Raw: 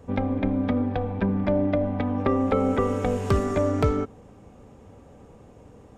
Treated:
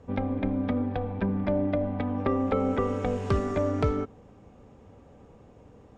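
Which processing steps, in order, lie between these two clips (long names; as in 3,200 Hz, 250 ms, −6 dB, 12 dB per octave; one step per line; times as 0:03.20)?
low-pass filter 6,100 Hz 12 dB per octave
level −3.5 dB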